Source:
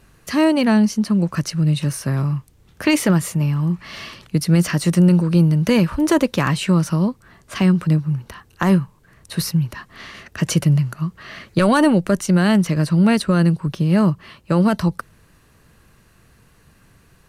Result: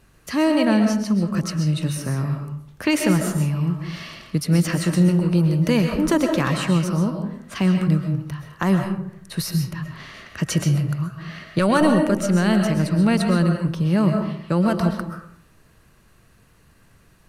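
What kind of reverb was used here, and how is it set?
digital reverb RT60 0.67 s, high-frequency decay 0.5×, pre-delay 90 ms, DRR 4 dB; gain -3.5 dB

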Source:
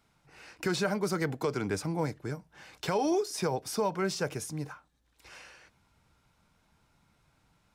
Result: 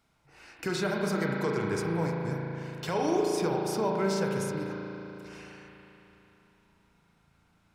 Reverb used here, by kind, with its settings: spring tank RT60 3.4 s, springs 36 ms, chirp 40 ms, DRR -1 dB; gain -2 dB

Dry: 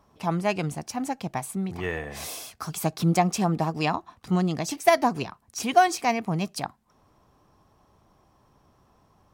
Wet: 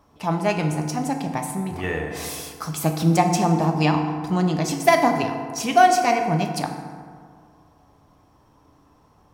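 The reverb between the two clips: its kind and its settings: FDN reverb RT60 2 s, low-frequency decay 1×, high-frequency decay 0.45×, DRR 3.5 dB; gain +2.5 dB

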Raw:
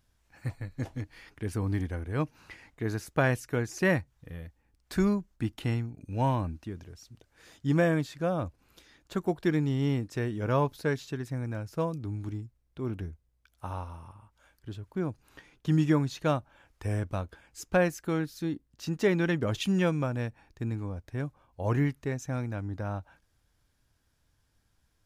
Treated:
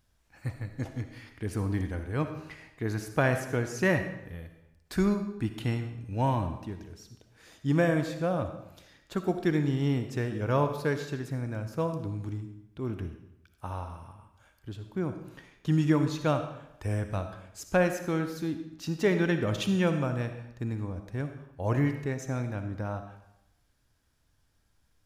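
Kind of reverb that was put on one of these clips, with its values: digital reverb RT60 0.84 s, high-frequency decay 0.9×, pre-delay 20 ms, DRR 7.5 dB

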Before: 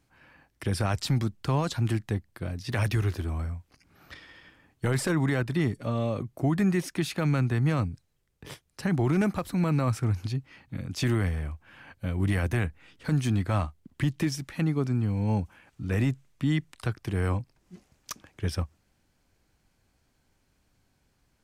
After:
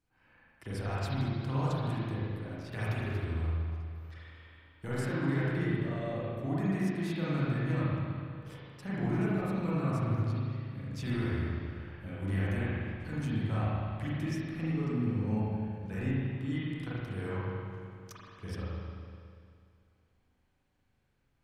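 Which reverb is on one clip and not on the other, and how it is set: spring tank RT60 2.3 s, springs 37/41 ms, chirp 40 ms, DRR -9 dB; gain -14.5 dB

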